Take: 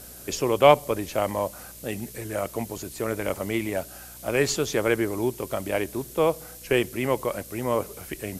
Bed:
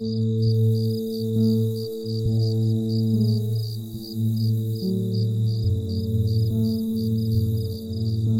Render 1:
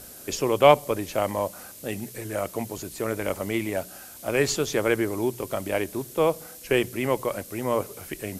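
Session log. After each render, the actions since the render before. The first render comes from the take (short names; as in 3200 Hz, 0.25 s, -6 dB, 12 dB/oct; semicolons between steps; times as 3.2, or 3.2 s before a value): de-hum 60 Hz, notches 3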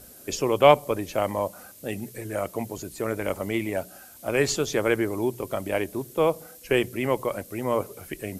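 denoiser 6 dB, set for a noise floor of -44 dBFS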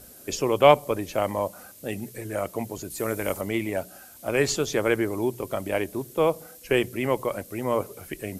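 2.9–3.41 high shelf 5600 Hz +9 dB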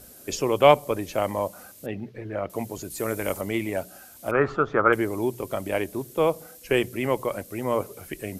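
1.86–2.5 air absorption 290 m; 4.31–4.93 synth low-pass 1300 Hz, resonance Q 7.8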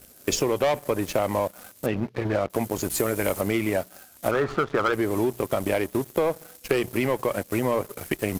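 sample leveller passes 3; compressor 6:1, threshold -21 dBFS, peak gain reduction 14 dB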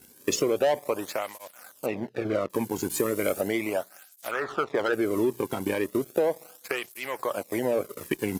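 tape flanging out of phase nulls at 0.36 Hz, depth 1.7 ms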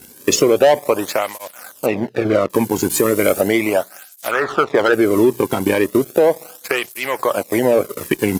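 gain +11.5 dB; limiter -2 dBFS, peak gain reduction 2.5 dB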